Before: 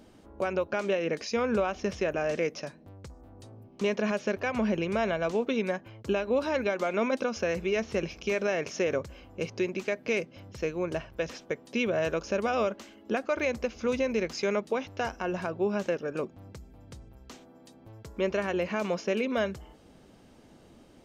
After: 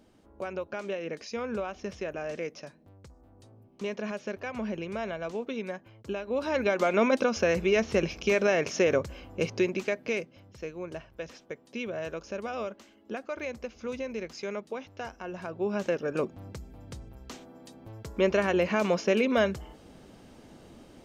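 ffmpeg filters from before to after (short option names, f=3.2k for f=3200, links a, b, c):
-af "volume=15dB,afade=t=in:st=6.26:d=0.56:silence=0.316228,afade=t=out:st=9.51:d=0.91:silence=0.281838,afade=t=in:st=15.36:d=0.95:silence=0.281838"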